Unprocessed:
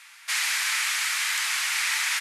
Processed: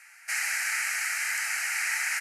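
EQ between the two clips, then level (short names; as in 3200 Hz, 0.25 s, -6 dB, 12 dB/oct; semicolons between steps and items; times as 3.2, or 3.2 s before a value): high shelf 11000 Hz -4.5 dB; fixed phaser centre 710 Hz, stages 8; 0.0 dB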